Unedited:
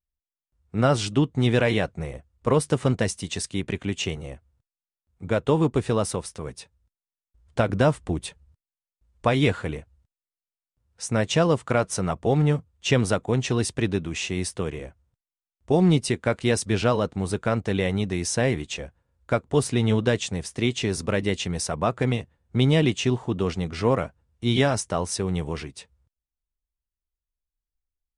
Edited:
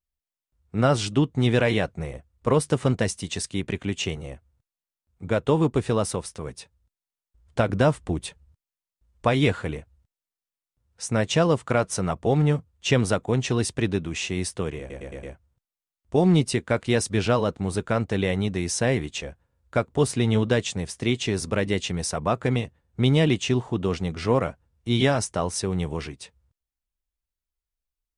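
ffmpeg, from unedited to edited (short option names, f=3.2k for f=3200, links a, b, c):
-filter_complex "[0:a]asplit=5[a][b][c][d][e];[a]atrim=end=14.902[f];[b]atrim=start=14.788:end=14.902[g];[c]atrim=start=14.788:end=14.902[h];[d]atrim=start=14.788:end=14.902[i];[e]atrim=start=14.788[j];[f][g]acrossfade=d=0.004:c1=hsin:c2=hsin[k];[k][h]acrossfade=d=0.004:c1=hsin:c2=hsin[l];[l][i]acrossfade=d=0.004:c1=hsin:c2=hsin[m];[m][j]acrossfade=d=0.004:c1=hsin:c2=hsin"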